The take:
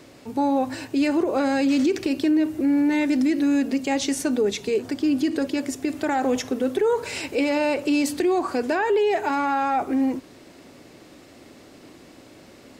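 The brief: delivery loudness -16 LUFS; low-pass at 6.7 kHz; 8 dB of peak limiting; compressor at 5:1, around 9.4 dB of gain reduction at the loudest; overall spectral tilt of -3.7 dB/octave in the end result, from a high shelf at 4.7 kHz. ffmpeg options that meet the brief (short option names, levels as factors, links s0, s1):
-af "lowpass=6700,highshelf=f=4700:g=6,acompressor=threshold=0.0398:ratio=5,volume=6.31,alimiter=limit=0.447:level=0:latency=1"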